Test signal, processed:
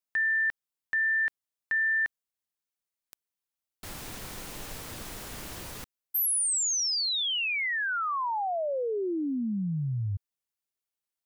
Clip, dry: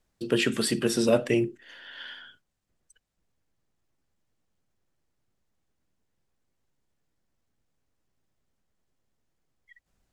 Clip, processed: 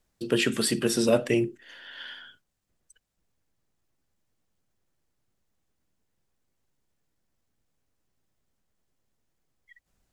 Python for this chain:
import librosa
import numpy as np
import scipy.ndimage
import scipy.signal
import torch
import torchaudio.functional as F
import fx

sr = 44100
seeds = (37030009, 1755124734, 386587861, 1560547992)

y = fx.high_shelf(x, sr, hz=6700.0, db=4.0)